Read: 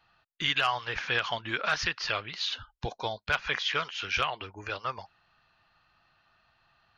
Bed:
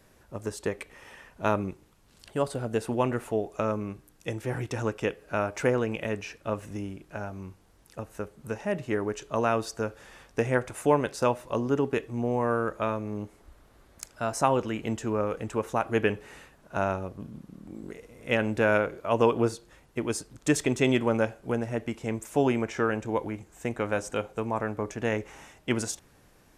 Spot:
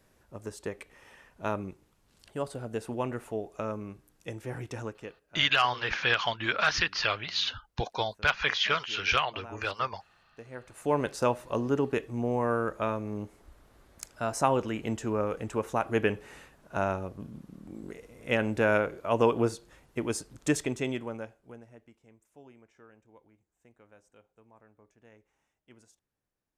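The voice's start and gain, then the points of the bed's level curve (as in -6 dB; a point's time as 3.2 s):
4.95 s, +2.5 dB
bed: 4.78 s -6 dB
5.3 s -21 dB
10.46 s -21 dB
11.01 s -1.5 dB
20.44 s -1.5 dB
22.18 s -29.5 dB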